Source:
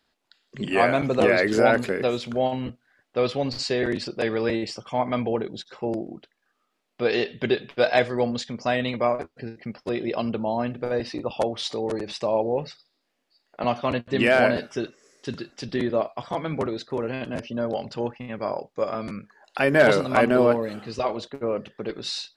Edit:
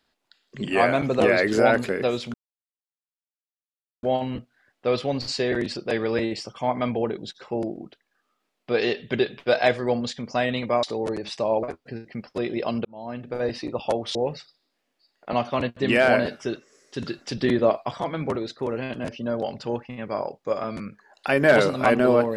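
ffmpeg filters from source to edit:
ffmpeg -i in.wav -filter_complex "[0:a]asplit=8[link_01][link_02][link_03][link_04][link_05][link_06][link_07][link_08];[link_01]atrim=end=2.34,asetpts=PTS-STARTPTS,afade=type=out:start_time=2.336:duration=0.004:curve=hsin,apad=pad_dur=1.69[link_09];[link_02]atrim=start=2.34:end=9.142,asetpts=PTS-STARTPTS,afade=type=in:duration=0.004:curve=hsin[link_10];[link_03]atrim=start=11.658:end=12.462[link_11];[link_04]atrim=start=9.138:end=10.36,asetpts=PTS-STARTPTS,afade=type=out:start_time=1.218:duration=0.004:curve=hsin[link_12];[link_05]atrim=start=10.36:end=11.662,asetpts=PTS-STARTPTS,afade=type=in:duration=0.61[link_13];[link_06]atrim=start=12.458:end=15.332[link_14];[link_07]atrim=start=15.328:end=16.312,asetpts=PTS-STARTPTS,volume=4dB[link_15];[link_08]atrim=start=16.308[link_16];[link_09][link_10]concat=n=2:v=0:a=1[link_17];[link_17][link_11]acrossfade=duration=0.004:curve1=hsin:curve2=hsin[link_18];[link_12][link_13]concat=n=2:v=0:a=1[link_19];[link_18][link_19]acrossfade=duration=0.004:curve1=hsin:curve2=hsin[link_20];[link_20][link_14]acrossfade=duration=0.004:curve1=hsin:curve2=hsin[link_21];[link_21][link_15]acrossfade=duration=0.004:curve1=hsin:curve2=hsin[link_22];[link_22][link_16]acrossfade=duration=0.004:curve1=hsin:curve2=hsin" out.wav

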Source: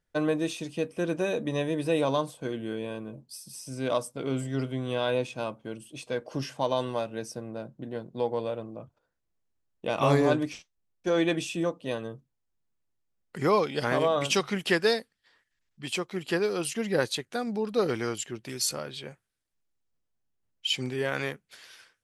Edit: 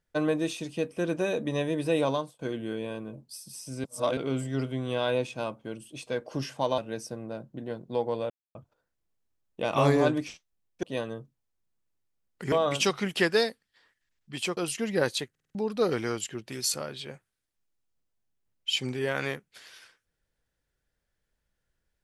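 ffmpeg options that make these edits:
ffmpeg -i in.wav -filter_complex "[0:a]asplit=15[link_01][link_02][link_03][link_04][link_05][link_06][link_07][link_08][link_09][link_10][link_11][link_12][link_13][link_14][link_15];[link_01]atrim=end=2.39,asetpts=PTS-STARTPTS,afade=type=out:start_time=2.08:duration=0.31:silence=0.0707946[link_16];[link_02]atrim=start=2.39:end=3.842,asetpts=PTS-STARTPTS,afade=type=in:duration=0.004:curve=hsin:silence=0.0707946[link_17];[link_03]atrim=start=3.838:end=4.172,asetpts=PTS-STARTPTS,areverse[link_18];[link_04]atrim=start=4.168:end=6.782[link_19];[link_05]atrim=start=7.028:end=8.55,asetpts=PTS-STARTPTS,afade=type=out:start_time=1.518:duration=0.004:curve=hsin[link_20];[link_06]atrim=start=8.55:end=8.8,asetpts=PTS-STARTPTS,volume=0[link_21];[link_07]atrim=start=8.8:end=11.082,asetpts=PTS-STARTPTS,afade=type=in:duration=0.004:curve=hsin[link_22];[link_08]atrim=start=11.768:end=13.462[link_23];[link_09]atrim=start=14.018:end=16.072[link_24];[link_10]atrim=start=16.538:end=17.322[link_25];[link_11]atrim=start=17.268:end=17.322[link_26];[link_12]atrim=start=17.268:end=17.322[link_27];[link_13]atrim=start=17.268:end=17.322[link_28];[link_14]atrim=start=17.268:end=17.322[link_29];[link_15]atrim=start=17.518[link_30];[link_16][link_17]concat=n=2:v=0:a=1[link_31];[link_31][link_18]acrossfade=duration=0.004:curve1=hsin:curve2=hsin[link_32];[link_32][link_19]acrossfade=duration=0.004:curve1=hsin:curve2=hsin[link_33];[link_20][link_21][link_22]concat=n=3:v=0:a=1[link_34];[link_33][link_34]acrossfade=duration=0.004:curve1=hsin:curve2=hsin[link_35];[link_35][link_23]acrossfade=duration=0.004:curve1=hsin:curve2=hsin[link_36];[link_36][link_24]acrossfade=duration=0.004:curve1=hsin:curve2=hsin[link_37];[link_37][link_25]acrossfade=duration=0.004:curve1=hsin:curve2=hsin[link_38];[link_38][link_26]acrossfade=duration=0.004:curve1=hsin:curve2=hsin[link_39];[link_39][link_27]acrossfade=duration=0.004:curve1=hsin:curve2=hsin[link_40];[link_40][link_28]acrossfade=duration=0.004:curve1=hsin:curve2=hsin[link_41];[link_41][link_29]acrossfade=duration=0.004:curve1=hsin:curve2=hsin[link_42];[link_42][link_30]acrossfade=duration=0.004:curve1=hsin:curve2=hsin" out.wav

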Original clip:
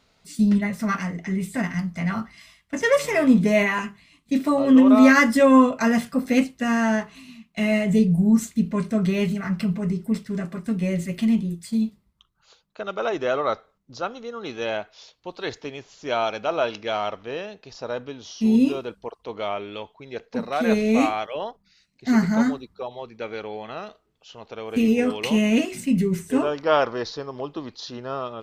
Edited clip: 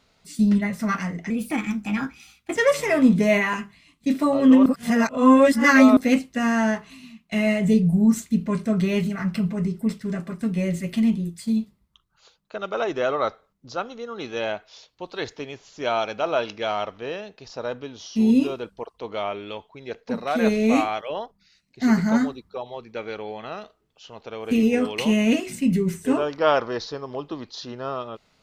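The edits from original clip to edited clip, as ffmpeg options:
ffmpeg -i in.wav -filter_complex "[0:a]asplit=5[link_01][link_02][link_03][link_04][link_05];[link_01]atrim=end=1.304[link_06];[link_02]atrim=start=1.3:end=2.81,asetpts=PTS-STARTPTS,asetrate=52920,aresample=44100,atrim=end_sample=55492,asetpts=PTS-STARTPTS[link_07];[link_03]atrim=start=2.806:end=4.912[link_08];[link_04]atrim=start=4.908:end=6.222,asetpts=PTS-STARTPTS,areverse[link_09];[link_05]atrim=start=6.218[link_10];[link_06][link_07]acrossfade=duration=0.004:curve1=hsin:curve2=hsin[link_11];[link_11][link_08]acrossfade=duration=0.004:curve1=hsin:curve2=hsin[link_12];[link_12][link_09]acrossfade=duration=0.004:curve1=hsin:curve2=hsin[link_13];[link_13][link_10]acrossfade=duration=0.004:curve1=hsin:curve2=hsin" out.wav

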